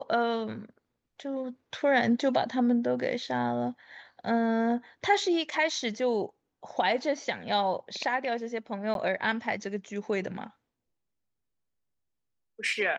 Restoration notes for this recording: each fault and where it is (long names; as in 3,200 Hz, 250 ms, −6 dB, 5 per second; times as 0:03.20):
0:08.94–0:08.95: drop-out 12 ms